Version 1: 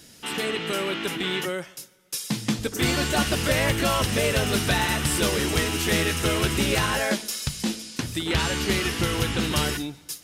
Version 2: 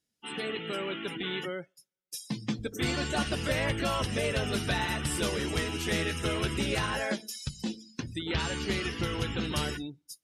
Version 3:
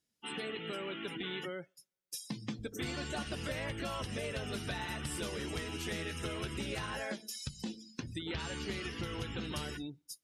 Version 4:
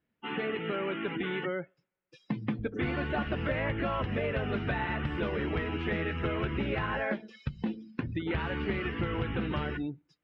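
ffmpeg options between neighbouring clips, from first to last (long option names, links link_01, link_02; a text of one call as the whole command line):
ffmpeg -i in.wav -af "afftdn=noise_reduction=28:noise_floor=-34,volume=-6.5dB" out.wav
ffmpeg -i in.wav -af "acompressor=threshold=-36dB:ratio=3,volume=-1.5dB" out.wav
ffmpeg -i in.wav -af "lowpass=frequency=2400:width=0.5412,lowpass=frequency=2400:width=1.3066,volume=8dB" out.wav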